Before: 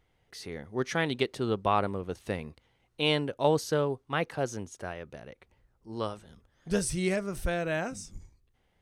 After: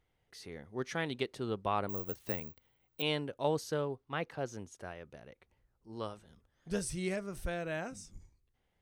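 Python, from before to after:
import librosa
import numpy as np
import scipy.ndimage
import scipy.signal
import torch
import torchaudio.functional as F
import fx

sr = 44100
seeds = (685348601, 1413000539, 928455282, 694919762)

y = fx.resample_bad(x, sr, factor=2, down='none', up='zero_stuff', at=(1.89, 3.02))
y = fx.peak_eq(y, sr, hz=9700.0, db=-7.5, octaves=0.83, at=(3.86, 4.54))
y = y * 10.0 ** (-7.0 / 20.0)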